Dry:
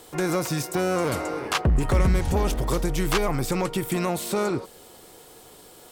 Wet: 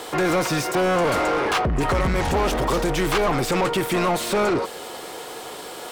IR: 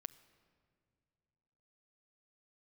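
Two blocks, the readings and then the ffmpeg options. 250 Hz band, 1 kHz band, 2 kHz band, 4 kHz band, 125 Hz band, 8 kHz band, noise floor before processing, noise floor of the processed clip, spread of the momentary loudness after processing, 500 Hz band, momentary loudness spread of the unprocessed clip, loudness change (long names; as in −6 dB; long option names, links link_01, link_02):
+2.5 dB, +7.0 dB, +6.5 dB, +5.0 dB, −1.5 dB, +2.0 dB, −49 dBFS, −36 dBFS, 14 LU, +5.0 dB, 5 LU, +3.5 dB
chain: -filter_complex "[0:a]asoftclip=type=tanh:threshold=-17.5dB,asplit=2[link_01][link_02];[link_02]highpass=frequency=720:poles=1,volume=22dB,asoftclip=type=tanh:threshold=-17.5dB[link_03];[link_01][link_03]amix=inputs=2:normalize=0,lowpass=frequency=2500:poles=1,volume=-6dB,volume=3.5dB"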